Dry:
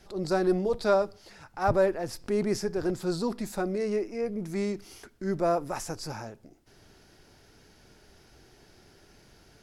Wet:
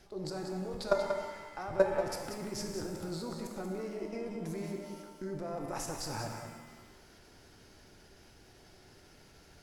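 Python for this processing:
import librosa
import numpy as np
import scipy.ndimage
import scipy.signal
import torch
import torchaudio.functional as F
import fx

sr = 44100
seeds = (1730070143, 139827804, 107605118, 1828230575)

y = fx.level_steps(x, sr, step_db=20)
y = y + 10.0 ** (-7.5 / 20.0) * np.pad(y, (int(186 * sr / 1000.0), 0))[:len(y)]
y = fx.rev_shimmer(y, sr, seeds[0], rt60_s=1.4, semitones=7, shimmer_db=-8, drr_db=4.0)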